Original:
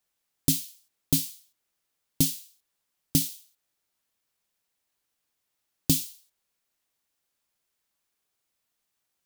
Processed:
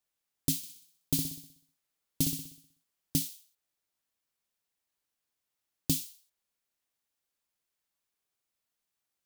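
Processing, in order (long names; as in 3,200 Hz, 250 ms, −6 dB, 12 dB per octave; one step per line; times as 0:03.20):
0:00.57–0:03.18: flutter between parallel walls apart 10.7 metres, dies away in 0.62 s
level −6 dB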